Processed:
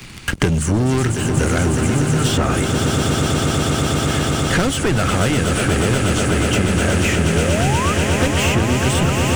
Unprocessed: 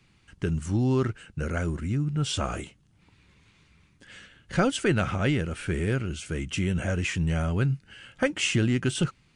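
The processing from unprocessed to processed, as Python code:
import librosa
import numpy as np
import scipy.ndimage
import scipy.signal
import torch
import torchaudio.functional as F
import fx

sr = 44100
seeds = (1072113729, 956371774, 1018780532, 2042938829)

p1 = fx.high_shelf(x, sr, hz=8200.0, db=10.0)
p2 = fx.hum_notches(p1, sr, base_hz=50, count=4)
p3 = 10.0 ** (-27.0 / 20.0) * np.tanh(p2 / 10.0 ** (-27.0 / 20.0))
p4 = p2 + F.gain(torch.from_numpy(p3), -4.0).numpy()
p5 = fx.leveller(p4, sr, passes=3)
p6 = fx.spec_paint(p5, sr, seeds[0], shape='rise', start_s=7.34, length_s=0.6, low_hz=410.0, high_hz=1300.0, level_db=-20.0)
p7 = fx.echo_swell(p6, sr, ms=121, loudest=8, wet_db=-10)
p8 = fx.band_squash(p7, sr, depth_pct=100)
y = F.gain(torch.from_numpy(p8), -3.5).numpy()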